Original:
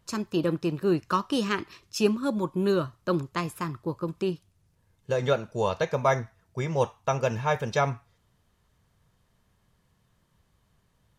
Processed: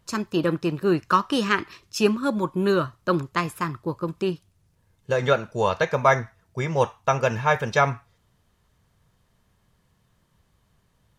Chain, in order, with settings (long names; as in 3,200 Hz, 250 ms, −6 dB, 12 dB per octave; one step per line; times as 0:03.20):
dynamic equaliser 1,600 Hz, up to +6 dB, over −41 dBFS, Q 0.9
level +2.5 dB